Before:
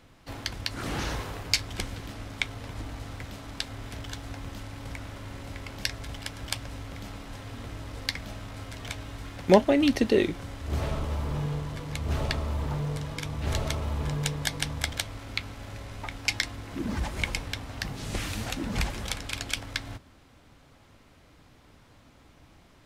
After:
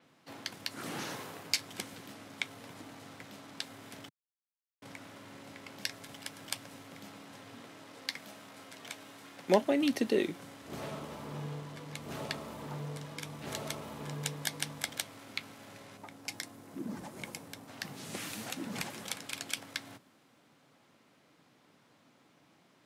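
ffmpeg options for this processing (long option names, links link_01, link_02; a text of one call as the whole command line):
ffmpeg -i in.wav -filter_complex "[0:a]asettb=1/sr,asplit=3[link_01][link_02][link_03];[link_01]atrim=end=7.604[link_04];[link_02]atrim=start=7.6:end=9.61,asetpts=PTS-STARTPTS,afade=type=in:duration=0.004:curve=qsin,afade=type=out:start_time=2.006:duration=0.004:curve=qsin,highpass=frequency=230:poles=1[link_05];[link_03]atrim=start=9.606[link_06];[link_04][link_05]acrossfade=duration=0.004:curve1=hsin:curve2=qsin[link_07];[link_07][link_06]acrossfade=duration=0.004:curve1=qsin:curve2=hsin,asettb=1/sr,asplit=3[link_08][link_09][link_10];[link_08]atrim=end=15.974[link_11];[link_09]atrim=start=15.97:end=17.68,asetpts=PTS-STARTPTS,afade=type=in:duration=0.004:curve=qsin,afade=type=out:start_time=1.706:duration=0.004:curve=qsin,equalizer=frequency=2800:width=0.48:gain=-9[link_12];[link_10]atrim=start=17.676[link_13];[link_11][link_12]acrossfade=duration=0.004:curve1=hsin:curve2=qsin[link_14];[link_14][link_13]acrossfade=duration=0.004:curve1=qsin:curve2=hsin,asplit=3[link_15][link_16][link_17];[link_15]atrim=end=4.09,asetpts=PTS-STARTPTS,afade=type=out:start_time=4.086:duration=0.004:curve=hsin[link_18];[link_16]atrim=start=4.09:end=4.82,asetpts=PTS-STARTPTS,volume=0[link_19];[link_17]atrim=start=4.82,asetpts=PTS-STARTPTS,afade=type=in:duration=0.004:curve=hsin[link_20];[link_18][link_19][link_20]concat=n=3:v=0:a=1,highpass=frequency=150:width=0.5412,highpass=frequency=150:width=1.3066,adynamicequalizer=threshold=0.00316:dfrequency=7700:dqfactor=0.7:tfrequency=7700:tqfactor=0.7:attack=5:release=100:ratio=0.375:range=3.5:mode=boostabove:tftype=highshelf,volume=-6.5dB" out.wav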